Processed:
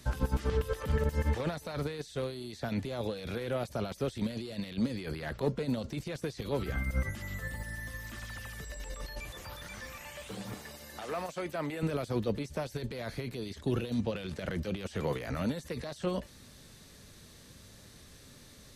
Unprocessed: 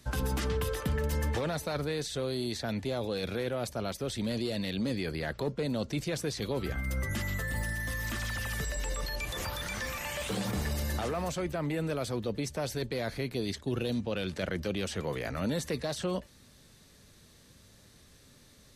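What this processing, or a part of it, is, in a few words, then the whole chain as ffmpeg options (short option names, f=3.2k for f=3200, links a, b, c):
de-esser from a sidechain: -filter_complex "[0:a]asettb=1/sr,asplit=3[a][b][c];[a]atrim=end=10.544[d];[b]atrim=start=10.54:end=11.83,asetpts=PTS-STARTPTS,afade=t=in:d=0.004:c=qsin,afade=t=out:st=1.286:d=0.004:c=qsin,highpass=f=460:p=1[e];[c]atrim=start=11.826[f];[d][e]acrossfade=d=0.004:c1=hsin:c2=qsin[g];[g][f]acrossfade=d=0.004:c1=qsin:c2=hsin,asplit=2[h][i];[i]highpass=5k,apad=whole_len=827252[j];[h][j]sidechaincompress=threshold=-55dB:ratio=8:attack=0.72:release=22,volume=4dB"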